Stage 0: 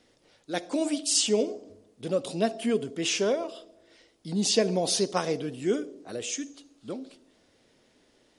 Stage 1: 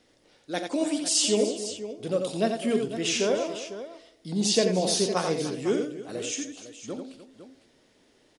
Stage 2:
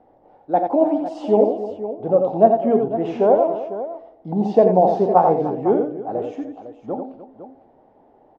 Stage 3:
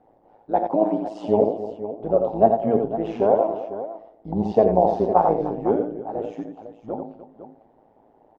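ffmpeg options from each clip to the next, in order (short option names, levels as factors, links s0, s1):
-af "aecho=1:1:44|87|298|504:0.188|0.501|0.178|0.237"
-af "lowpass=f=800:t=q:w=6.3,volume=1.88"
-af "tremolo=f=110:d=0.71"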